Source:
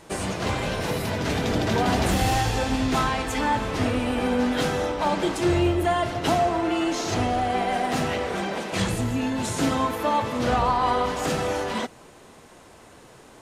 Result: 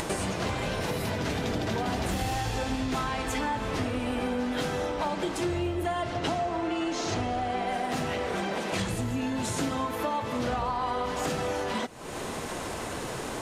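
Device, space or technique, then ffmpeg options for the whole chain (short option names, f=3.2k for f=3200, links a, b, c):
upward and downward compression: -filter_complex "[0:a]acompressor=mode=upward:threshold=-35dB:ratio=2.5,acompressor=threshold=-38dB:ratio=5,asettb=1/sr,asplit=3[a][b][c];[a]atrim=end=6.034[d];[b]atrim=start=6.03:end=7.67,asetpts=PTS-STARTPTS,afade=t=in:d=0.004:c=qsin,afade=t=out:st=1.636:d=0.004:c=qsin,lowpass=8.3k[e];[c]atrim=start=7.666[f];[d][e]acrossfade=d=0.004:c1=hsin:c2=qsin[g];[g][f]acrossfade=d=0.004:c1=qsin:c2=hsin,volume=9dB"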